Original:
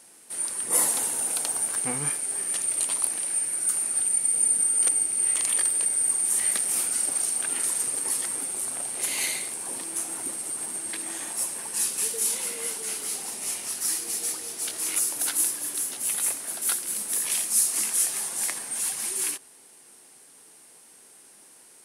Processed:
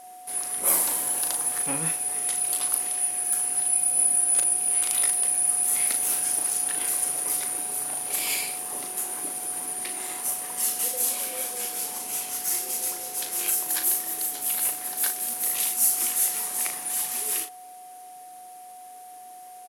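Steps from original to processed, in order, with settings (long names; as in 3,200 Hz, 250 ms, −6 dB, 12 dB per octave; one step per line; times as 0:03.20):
steady tone 660 Hz −45 dBFS
double-tracking delay 41 ms −7.5 dB
change of speed 1.11×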